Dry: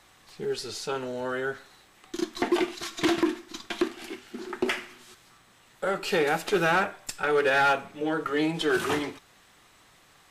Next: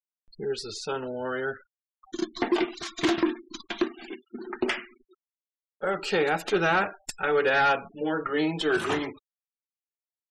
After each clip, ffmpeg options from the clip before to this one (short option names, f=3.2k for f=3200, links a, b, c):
-af "afftfilt=real='re*gte(hypot(re,im),0.0112)':imag='im*gte(hypot(re,im),0.0112)':win_size=1024:overlap=0.75,acompressor=mode=upward:threshold=-45dB:ratio=2.5"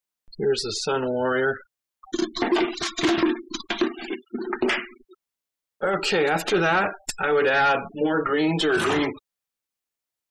-af "alimiter=limit=-23dB:level=0:latency=1:release=10,volume=8.5dB"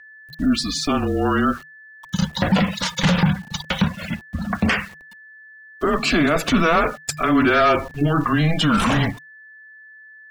-af "aeval=exprs='val(0)*gte(abs(val(0)),0.00708)':c=same,aeval=exprs='val(0)+0.00501*sin(2*PI*1900*n/s)':c=same,afreqshift=-160,volume=4dB"